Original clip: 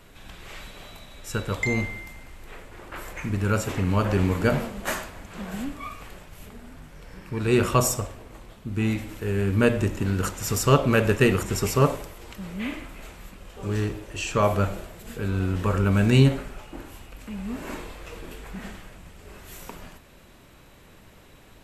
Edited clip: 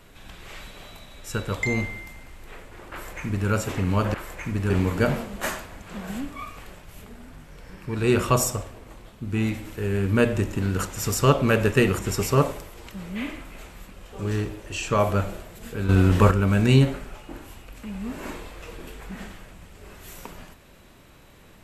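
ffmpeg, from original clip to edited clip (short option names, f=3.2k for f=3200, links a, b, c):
-filter_complex "[0:a]asplit=5[a][b][c][d][e];[a]atrim=end=4.142[f];[b]atrim=start=2.918:end=3.482[g];[c]atrim=start=4.138:end=15.332[h];[d]atrim=start=15.328:end=15.752,asetpts=PTS-STARTPTS,volume=8dB[i];[e]atrim=start=15.748[j];[f][g]acrossfade=d=0.004:c1=hsin:c2=hsin[k];[k][h]acrossfade=d=0.004:c1=hsin:c2=hsin[l];[l][i]acrossfade=d=0.004:c1=hsin:c2=hsin[m];[m][j]acrossfade=d=0.004:c1=hsin:c2=hsin"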